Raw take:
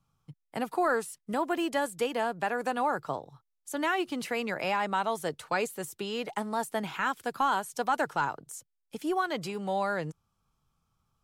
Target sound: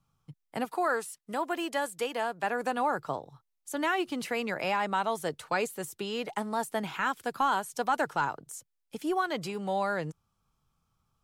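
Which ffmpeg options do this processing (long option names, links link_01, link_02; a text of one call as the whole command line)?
ffmpeg -i in.wav -filter_complex "[0:a]asettb=1/sr,asplit=3[link_01][link_02][link_03];[link_01]atrim=end=0.654[link_04];[link_02]atrim=start=0.65:end=2.44,asetpts=PTS-STARTPTS,afade=type=in:duration=0.004:curve=qsin,afade=type=out:start_time=1.786:duration=0.004:curve=qsin,lowshelf=frequency=300:gain=-9.5[link_05];[link_03]atrim=start=2.436[link_06];[link_04][link_05]acrossfade=duration=0.004:curve1=hsin:curve2=qsin[link_07];[link_07][link_06]acrossfade=duration=0.004:curve1=qsin:curve2=hsin" out.wav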